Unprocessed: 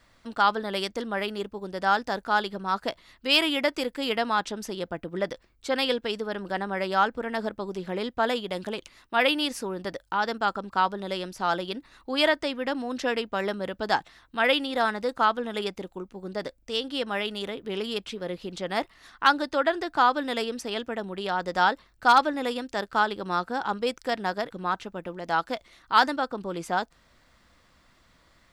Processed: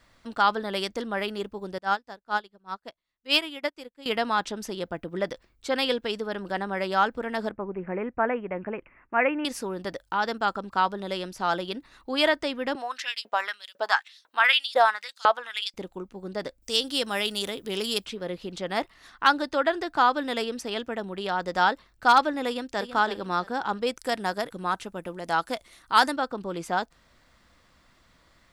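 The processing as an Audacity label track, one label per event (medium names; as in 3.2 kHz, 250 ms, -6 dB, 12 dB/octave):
1.780000	4.060000	upward expansion 2.5:1, over -39 dBFS
7.510000	9.450000	steep low-pass 2.5 kHz 72 dB/octave
12.750000	15.740000	LFO high-pass saw up 2 Hz 480–6000 Hz
16.620000	18.060000	tone controls bass 0 dB, treble +15 dB
22.470000	22.920000	echo throw 330 ms, feedback 25%, level -10 dB
23.960000	26.120000	peaking EQ 10 kHz +13.5 dB 0.8 oct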